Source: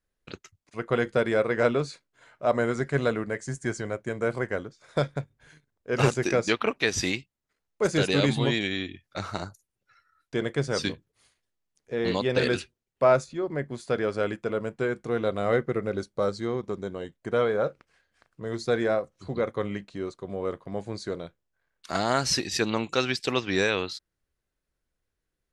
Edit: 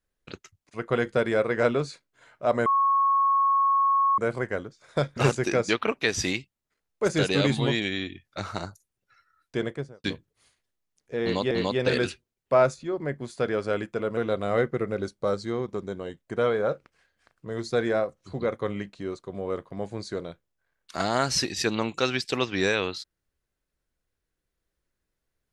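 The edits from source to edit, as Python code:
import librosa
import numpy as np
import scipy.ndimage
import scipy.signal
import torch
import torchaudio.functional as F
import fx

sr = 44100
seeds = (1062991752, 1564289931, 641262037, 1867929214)

y = fx.studio_fade_out(x, sr, start_s=10.35, length_s=0.48)
y = fx.edit(y, sr, fx.bleep(start_s=2.66, length_s=1.52, hz=1100.0, db=-18.5),
    fx.cut(start_s=5.17, length_s=0.79),
    fx.repeat(start_s=12.01, length_s=0.29, count=2),
    fx.cut(start_s=14.67, length_s=0.45), tone=tone)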